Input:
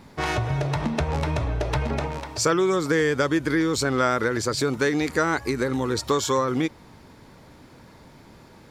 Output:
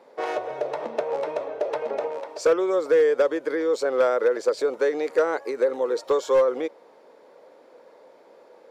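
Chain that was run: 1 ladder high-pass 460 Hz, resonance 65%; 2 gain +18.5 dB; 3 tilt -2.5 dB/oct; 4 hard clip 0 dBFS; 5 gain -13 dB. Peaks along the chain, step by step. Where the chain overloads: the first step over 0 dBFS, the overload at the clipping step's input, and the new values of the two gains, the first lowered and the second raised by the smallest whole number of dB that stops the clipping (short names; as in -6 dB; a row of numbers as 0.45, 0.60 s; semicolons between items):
-14.5, +4.0, +6.0, 0.0, -13.0 dBFS; step 2, 6.0 dB; step 2 +12.5 dB, step 5 -7 dB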